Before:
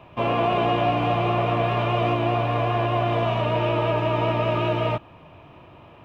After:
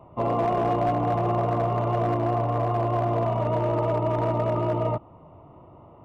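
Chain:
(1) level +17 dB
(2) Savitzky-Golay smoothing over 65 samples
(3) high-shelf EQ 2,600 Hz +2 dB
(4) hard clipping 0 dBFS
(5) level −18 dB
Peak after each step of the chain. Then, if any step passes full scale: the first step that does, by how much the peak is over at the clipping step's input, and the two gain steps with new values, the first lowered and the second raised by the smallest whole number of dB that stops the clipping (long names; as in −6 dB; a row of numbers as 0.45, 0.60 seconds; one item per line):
+6.5, +6.0, +6.0, 0.0, −18.0 dBFS
step 1, 6.0 dB
step 1 +11 dB, step 5 −12 dB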